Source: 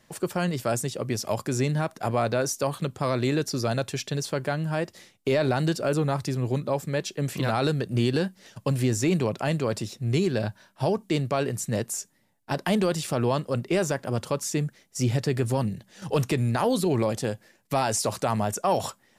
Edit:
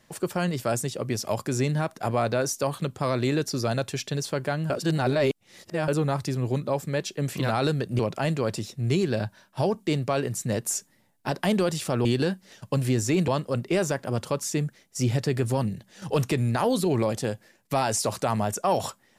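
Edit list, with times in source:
4.70–5.88 s: reverse
7.99–9.22 s: move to 13.28 s
11.89–12.51 s: gain +3.5 dB

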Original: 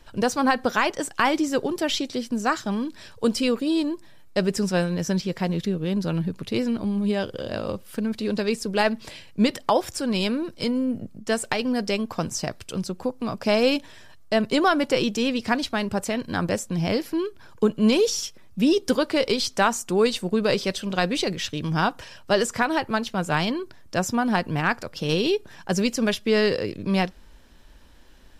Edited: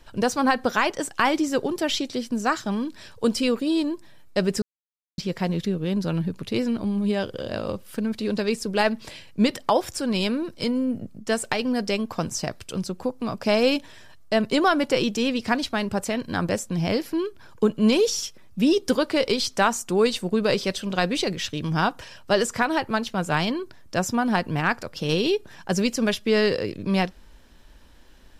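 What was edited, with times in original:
4.62–5.18 s: mute

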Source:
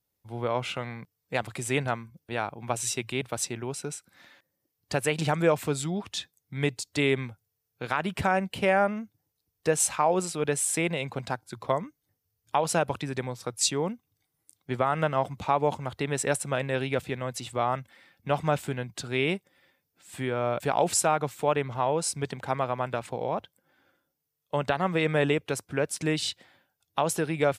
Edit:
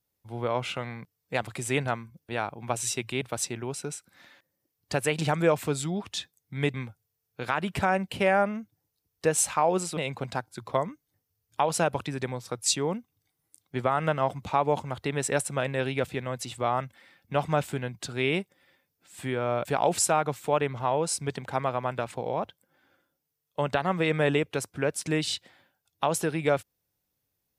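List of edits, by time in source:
6.74–7.16 s: delete
10.39–10.92 s: delete

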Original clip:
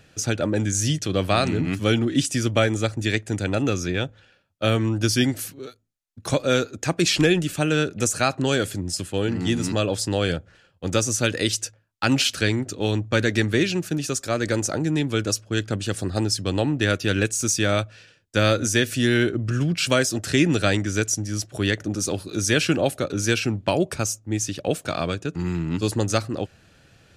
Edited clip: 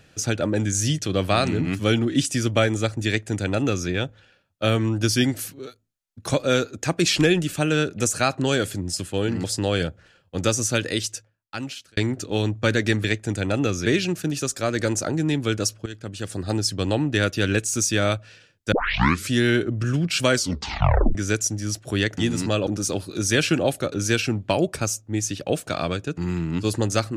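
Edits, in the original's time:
3.07–3.89 s: copy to 13.53 s
9.44–9.93 s: move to 21.85 s
11.14–12.46 s: fade out
15.53–16.31 s: fade in, from -15 dB
18.39 s: tape start 0.59 s
19.99 s: tape stop 0.83 s

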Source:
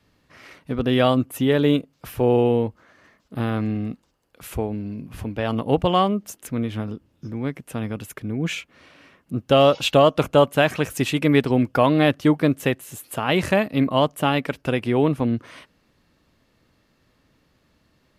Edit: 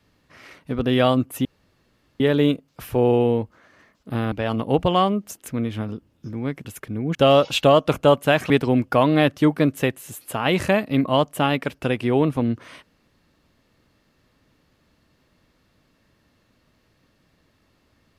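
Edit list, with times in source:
1.45 s: insert room tone 0.75 s
3.57–5.31 s: delete
7.64–7.99 s: delete
8.49–9.45 s: delete
10.80–11.33 s: delete

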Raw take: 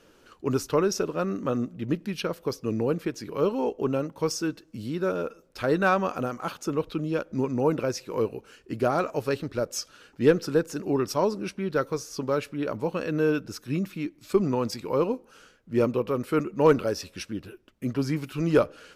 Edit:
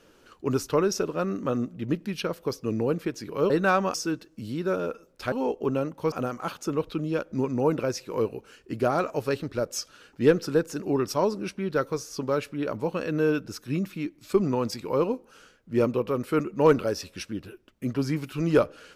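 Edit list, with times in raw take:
3.50–4.30 s: swap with 5.68–6.12 s

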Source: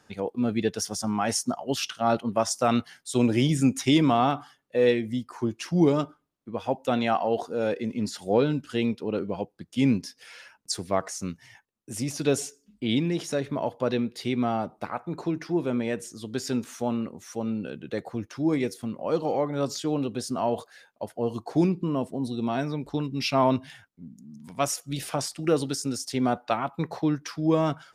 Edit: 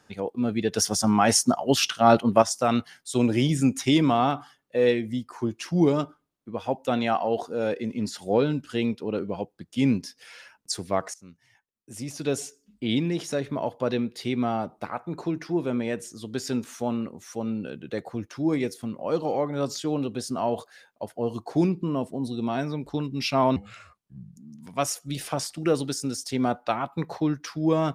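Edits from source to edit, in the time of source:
0.72–2.42 s: gain +6.5 dB
11.14–12.84 s: fade in, from -20 dB
23.56–24.18 s: speed 77%

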